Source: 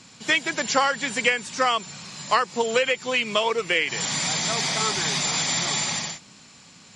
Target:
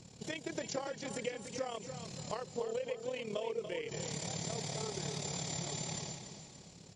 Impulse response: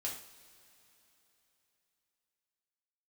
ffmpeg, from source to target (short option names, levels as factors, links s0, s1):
-filter_complex "[0:a]firequalizer=gain_entry='entry(130,0);entry(240,-10);entry(410,-1);entry(1200,-19);entry(5700,-12)':delay=0.05:min_phase=1,acompressor=threshold=0.00794:ratio=3,tremolo=f=36:d=0.71,asplit=2[s0][s1];[s1]aecho=0:1:288|576|864|1152|1440:0.355|0.149|0.0626|0.0263|0.011[s2];[s0][s2]amix=inputs=2:normalize=0,volume=1.88"